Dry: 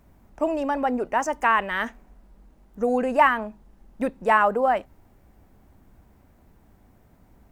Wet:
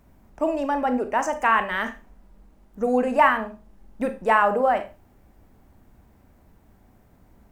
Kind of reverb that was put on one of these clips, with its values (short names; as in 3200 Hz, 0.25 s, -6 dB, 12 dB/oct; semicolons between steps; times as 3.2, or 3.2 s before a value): Schroeder reverb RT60 0.3 s, combs from 28 ms, DRR 8.5 dB